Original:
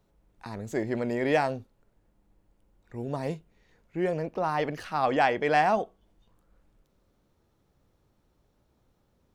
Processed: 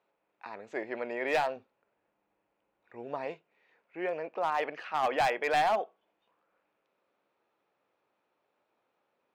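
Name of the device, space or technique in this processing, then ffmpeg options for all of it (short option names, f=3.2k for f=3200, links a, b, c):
megaphone: -filter_complex "[0:a]asettb=1/sr,asplit=3[a][b][c];[a]atrim=end=1.564[d];[b]atrim=start=1.56:end=3.25,asetpts=PTS-STARTPTS,afade=t=in:d=0.004:c=qsin,afade=t=out:st=1.686:d=0.004:c=qsin,lowshelf=f=130:g=11[e];[c]atrim=start=3.246[f];[d][e]acrossfade=d=0.004:c1=hsin:c2=qsin[g];[g][f]acrossfade=d=0.004:c1=qsin:c2=hsin,highpass=560,lowpass=2.6k,equalizer=f=2.5k:t=o:w=0.25:g=7,asoftclip=type=hard:threshold=-22dB"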